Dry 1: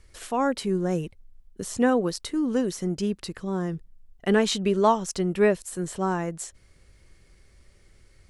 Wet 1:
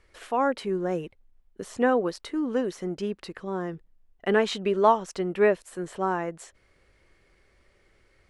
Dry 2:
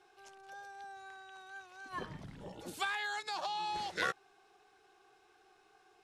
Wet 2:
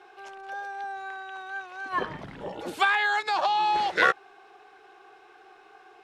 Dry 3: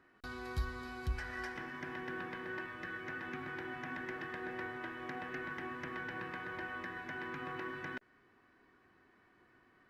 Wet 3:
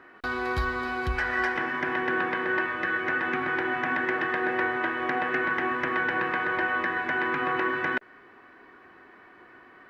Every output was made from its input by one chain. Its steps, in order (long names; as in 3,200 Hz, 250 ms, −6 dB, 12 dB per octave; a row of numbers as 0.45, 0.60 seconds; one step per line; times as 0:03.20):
bass and treble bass −11 dB, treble −13 dB
loudness normalisation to −27 LKFS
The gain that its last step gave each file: +1.5, +14.0, +17.0 decibels